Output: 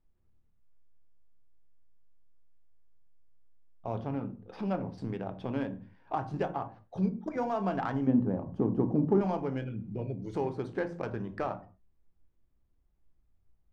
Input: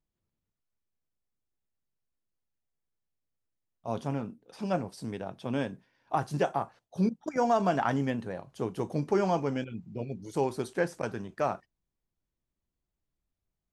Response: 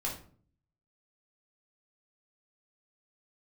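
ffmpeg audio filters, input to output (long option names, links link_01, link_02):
-filter_complex "[0:a]asettb=1/sr,asplit=3[link_01][link_02][link_03];[link_01]atrim=end=3.954[link_04];[link_02]atrim=start=3.95:end=4.98,asetpts=PTS-STARTPTS,afade=type=in:duration=0.004:curve=qsin,afade=type=out:start_time=1.026:duration=0.004:curve=qsin,equalizer=frequency=7900:width_type=o:width=0.39:gain=-14[link_05];[link_03]atrim=start=4.976[link_06];[link_04][link_05]acrossfade=duration=0.004:curve1=hsin:curve2=qsin[link_07];[link_07][link_06]acrossfade=duration=0.004:curve1=qsin:curve2=hsin,acompressor=threshold=-44dB:ratio=2,asettb=1/sr,asplit=3[link_08][link_09][link_10];[link_08]atrim=end=8.074[link_11];[link_09]atrim=start=8.07:end=9.21,asetpts=PTS-STARTPTS,afade=type=in:duration=0.004:curve=qsin,afade=type=out:start_time=1.136:duration=0.004:curve=qsin,equalizer=frequency=125:width_type=o:width=1:gain=3,equalizer=frequency=250:width_type=o:width=1:gain=11,equalizer=frequency=1000:width_type=o:width=1:gain=3,equalizer=frequency=2000:width_type=o:width=1:gain=-10,equalizer=frequency=4000:width_type=o:width=1:gain=-12,equalizer=frequency=8000:width_type=o:width=1:gain=-10[link_12];[link_10]atrim=start=9.206[link_13];[link_11][link_12]acrossfade=duration=0.004:curve1=hsin:curve2=qsin[link_14];[link_14][link_13]acrossfade=duration=0.004:curve1=qsin:curve2=hsin,asplit=2[link_15][link_16];[1:a]atrim=start_sample=2205,afade=type=out:start_time=0.27:duration=0.01,atrim=end_sample=12348,lowshelf=frequency=140:gain=11[link_17];[link_16][link_17]afir=irnorm=-1:irlink=0,volume=-9dB[link_18];[link_15][link_18]amix=inputs=2:normalize=0,adynamicsmooth=sensitivity=5.5:basefreq=2500,volume=4dB"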